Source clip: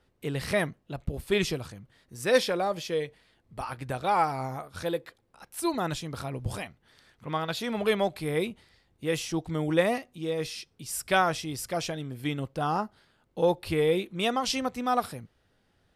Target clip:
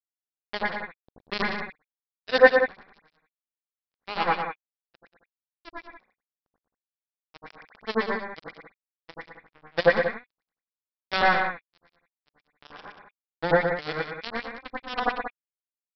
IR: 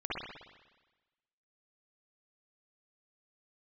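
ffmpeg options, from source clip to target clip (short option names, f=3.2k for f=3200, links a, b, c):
-filter_complex "[0:a]equalizer=f=82:w=0.57:g=-4.5,aresample=11025,acrusher=bits=2:mix=0:aa=0.5,aresample=44100[a];[1:a]atrim=start_sample=2205,atrim=end_sample=3528,asetrate=29106,aresample=44100[b];[a][b]afir=irnorm=-1:irlink=0,adynamicequalizer=threshold=0.00178:dfrequency=4200:dqfactor=4.1:tfrequency=4200:tqfactor=4.1:attack=5:release=100:ratio=0.375:range=3.5:mode=boostabove:tftype=bell,aecho=1:1:116.6|183.7:0.447|0.316"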